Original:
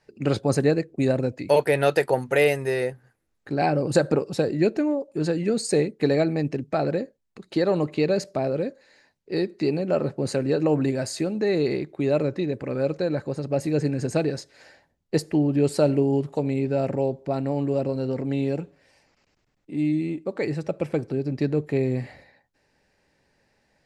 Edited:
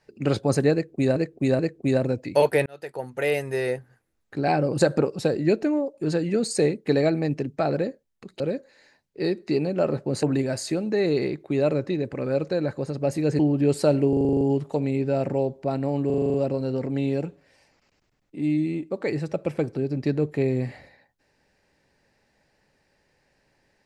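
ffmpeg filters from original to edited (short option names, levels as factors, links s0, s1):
-filter_complex "[0:a]asplit=22[s0][s1][s2][s3][s4][s5][s6][s7][s8][s9][s10][s11][s12][s13][s14][s15][s16][s17][s18][s19][s20][s21];[s0]atrim=end=1.162[s22];[s1]atrim=start=0.728:end=1.162[s23];[s2]atrim=start=0.728:end=1.8,asetpts=PTS-STARTPTS,afade=t=out:st=1.068:d=0.004:c=hsin[s24];[s3]atrim=start=1.8:end=7.542,asetpts=PTS-STARTPTS,afade=t=in:d=1.08[s25];[s4]atrim=start=8.518:end=10.352[s26];[s5]atrim=start=10.718:end=13.882[s27];[s6]atrim=start=15.338:end=16.082[s28];[s7]atrim=start=16.038:end=16.082[s29];[s8]atrim=start=16.038:end=16.082[s30];[s9]atrim=start=16.038:end=16.082[s31];[s10]atrim=start=16.038:end=16.082[s32];[s11]atrim=start=16.038:end=16.082[s33];[s12]atrim=start=16.038:end=16.082[s34];[s13]atrim=start=16.038:end=16.082[s35];[s14]atrim=start=16.038:end=17.732[s36];[s15]atrim=start=17.688:end=17.732[s37];[s16]atrim=start=17.688:end=17.732[s38];[s17]atrim=start=17.688:end=17.732[s39];[s18]atrim=start=17.688:end=17.732[s40];[s19]atrim=start=17.688:end=17.732[s41];[s20]atrim=start=17.688:end=17.732[s42];[s21]atrim=start=17.688[s43];[s22][s23]acrossfade=d=0.004:c1=hsin:c2=hsin[s44];[s24][s25]concat=n=2:v=0:a=1[s45];[s44][s45]acrossfade=d=0.004:c1=hsin:c2=hsin[s46];[s46][s26]acrossfade=d=0.004:c1=hsin:c2=hsin[s47];[s47][s27]acrossfade=d=0.004:c1=hsin:c2=hsin[s48];[s48][s28]acrossfade=d=0.004:c1=hsin:c2=hsin[s49];[s49][s29]acrossfade=d=0.004:c1=hsin:c2=hsin[s50];[s50][s30]acrossfade=d=0.004:c1=hsin:c2=hsin[s51];[s51][s31]acrossfade=d=0.004:c1=hsin:c2=hsin[s52];[s52][s32]acrossfade=d=0.004:c1=hsin:c2=hsin[s53];[s53][s33]acrossfade=d=0.004:c1=hsin:c2=hsin[s54];[s54][s34]acrossfade=d=0.004:c1=hsin:c2=hsin[s55];[s55][s35]acrossfade=d=0.004:c1=hsin:c2=hsin[s56];[s56][s36]acrossfade=d=0.004:c1=hsin:c2=hsin[s57];[s57][s37]acrossfade=d=0.004:c1=hsin:c2=hsin[s58];[s58][s38]acrossfade=d=0.004:c1=hsin:c2=hsin[s59];[s59][s39]acrossfade=d=0.004:c1=hsin:c2=hsin[s60];[s60][s40]acrossfade=d=0.004:c1=hsin:c2=hsin[s61];[s61][s41]acrossfade=d=0.004:c1=hsin:c2=hsin[s62];[s62][s42]acrossfade=d=0.004:c1=hsin:c2=hsin[s63];[s63][s43]acrossfade=d=0.004:c1=hsin:c2=hsin"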